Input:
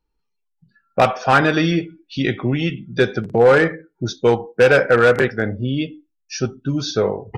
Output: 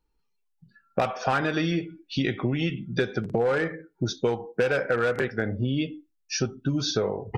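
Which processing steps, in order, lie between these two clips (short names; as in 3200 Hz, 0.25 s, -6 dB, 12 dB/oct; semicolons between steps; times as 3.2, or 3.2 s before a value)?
compressor 6:1, threshold -22 dBFS, peak gain reduction 12.5 dB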